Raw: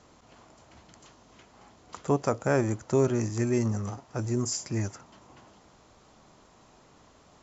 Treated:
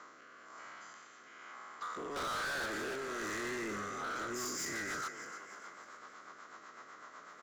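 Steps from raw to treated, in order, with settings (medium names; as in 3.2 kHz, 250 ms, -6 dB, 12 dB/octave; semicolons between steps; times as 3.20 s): every event in the spectrogram widened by 240 ms; high-pass 340 Hz 12 dB/octave; high-order bell 1.5 kHz +15 dB 1.1 oct; band-stop 1.8 kHz, Q 11; level held to a coarse grid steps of 17 dB; saturation -28 dBFS, distortion -1 dB; rotary cabinet horn 1.1 Hz, later 8 Hz, at 3.94 s; frequency-shifting echo 299 ms, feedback 48%, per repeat +41 Hz, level -12 dB; hard clipper -37 dBFS, distortion -6 dB; trim +1 dB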